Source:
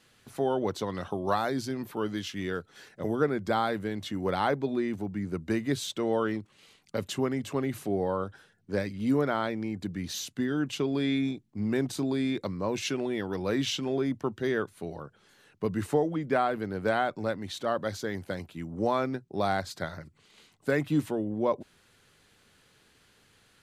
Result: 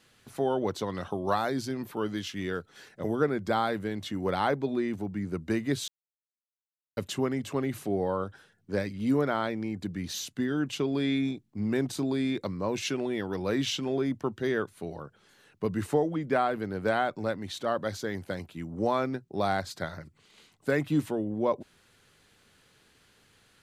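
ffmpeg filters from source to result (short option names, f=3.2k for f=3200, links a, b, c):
-filter_complex "[0:a]asplit=3[a][b][c];[a]atrim=end=5.88,asetpts=PTS-STARTPTS,afade=t=out:st=5.876:d=0.004:c=hsin[d];[b]atrim=start=5.88:end=6.97,asetpts=PTS-STARTPTS,volume=0[e];[c]atrim=start=6.97,asetpts=PTS-STARTPTS,afade=t=in:d=0.004:c=hsin[f];[d][e][f]concat=n=3:v=0:a=1"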